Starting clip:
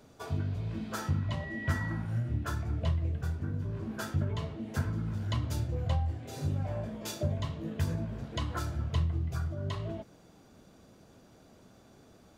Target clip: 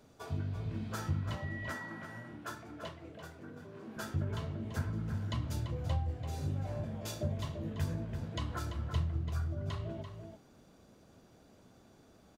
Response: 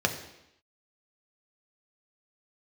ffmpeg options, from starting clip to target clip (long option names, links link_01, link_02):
-filter_complex "[0:a]asettb=1/sr,asplit=3[link_01][link_02][link_03];[link_01]atrim=end=1.374[link_04];[link_02]atrim=start=1.37:end=3.96,asetpts=PTS-STARTPTS,afade=type=in:duration=0.004:curve=qsin,afade=type=out:start_time=2.586:duration=0.004:curve=qsin,highpass=300[link_05];[link_03]atrim=start=3.956[link_06];[link_04][link_05]acrossfade=duration=0.004:curve1=hsin:curve2=qsin[link_07];[link_07][link_06]acrossfade=duration=0.004:curve1=qsin:curve2=hsin,asplit=2[link_08][link_09];[link_09]adelay=338.2,volume=-7dB,highshelf=frequency=4000:gain=-7.61[link_10];[link_08][link_10]amix=inputs=2:normalize=0,volume=-4dB"